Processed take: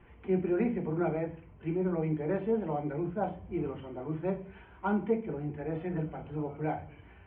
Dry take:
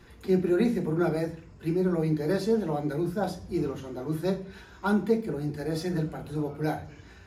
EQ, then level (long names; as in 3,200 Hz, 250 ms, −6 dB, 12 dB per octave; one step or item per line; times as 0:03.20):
Chebyshev low-pass with heavy ripple 3,200 Hz, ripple 6 dB
low-shelf EQ 140 Hz +4.5 dB
−1.0 dB